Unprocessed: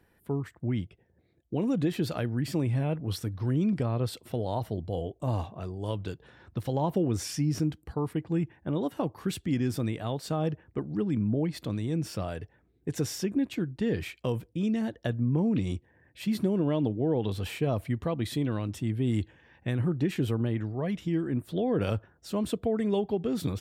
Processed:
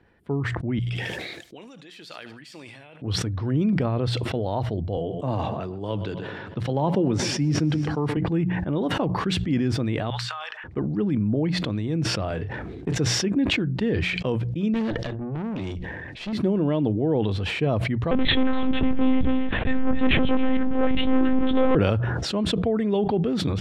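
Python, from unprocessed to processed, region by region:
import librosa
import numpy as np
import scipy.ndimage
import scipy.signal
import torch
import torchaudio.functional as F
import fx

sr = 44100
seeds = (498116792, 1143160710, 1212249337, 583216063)

y = fx.chain(x, sr, fx.differentiator(),
    fx.echo_feedback(ms=75, feedback_pct=53, wet_db=-20),
    fx.sustainer(db_per_s=37.0), at=(0.79, 3.02))
y = fx.chain(y, sr, fx.highpass(hz=110.0, slope=24),
    fx.echo_feedback(ms=126, feedback_pct=60, wet_db=-18.5), at=(4.97, 8.17))
y = fx.chain(y, sr, fx.cheby2_highpass(hz=250.0, order=4, stop_db=70),
    fx.over_compress(threshold_db=-51.0, ratio=-1.0), at=(10.1, 10.64))
y = fx.chain(y, sr, fx.leveller(passes=1),
    fx.doubler(ms=30.0, db=-11),
    fx.band_squash(depth_pct=70), at=(12.3, 12.95))
y = fx.chain(y, sr, fx.peak_eq(hz=5100.0, db=6.5, octaves=2.3),
    fx.transient(attack_db=3, sustain_db=11),
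    fx.tube_stage(drive_db=31.0, bias=0.75), at=(14.74, 16.33))
y = fx.chain(y, sr, fx.leveller(passes=3),
    fx.echo_single(ms=275, db=-11.0),
    fx.lpc_monotone(seeds[0], pitch_hz=260.0, order=10), at=(18.11, 21.75))
y = scipy.signal.sosfilt(scipy.signal.butter(2, 3800.0, 'lowpass', fs=sr, output='sos'), y)
y = fx.hum_notches(y, sr, base_hz=60, count=3)
y = fx.sustainer(y, sr, db_per_s=22.0)
y = F.gain(torch.from_numpy(y), 4.0).numpy()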